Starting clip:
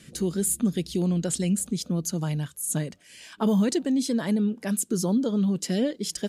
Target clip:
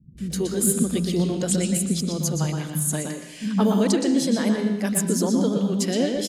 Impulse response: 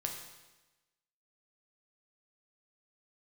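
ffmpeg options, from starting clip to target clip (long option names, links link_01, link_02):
-filter_complex "[0:a]acrossover=split=200[link_01][link_02];[link_02]adelay=180[link_03];[link_01][link_03]amix=inputs=2:normalize=0,asplit=2[link_04][link_05];[link_05]asetrate=55563,aresample=44100,atempo=0.793701,volume=-18dB[link_06];[link_04][link_06]amix=inputs=2:normalize=0,asplit=2[link_07][link_08];[1:a]atrim=start_sample=2205,lowpass=7700,adelay=120[link_09];[link_08][link_09]afir=irnorm=-1:irlink=0,volume=-4dB[link_10];[link_07][link_10]amix=inputs=2:normalize=0,volume=3.5dB"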